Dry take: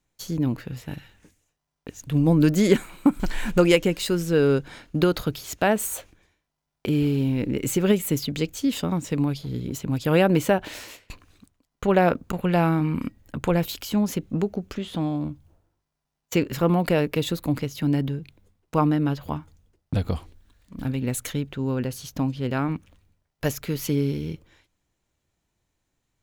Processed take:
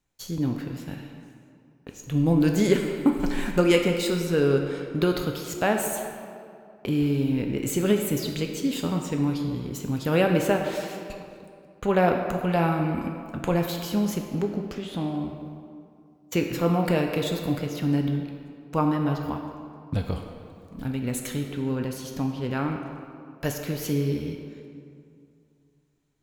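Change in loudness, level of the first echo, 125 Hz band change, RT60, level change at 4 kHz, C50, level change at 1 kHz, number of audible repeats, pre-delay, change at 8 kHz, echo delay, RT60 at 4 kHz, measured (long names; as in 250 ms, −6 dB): −1.5 dB, no echo audible, −2.5 dB, 2.4 s, −1.5 dB, 4.5 dB, −1.0 dB, no echo audible, 6 ms, −2.0 dB, no echo audible, 1.4 s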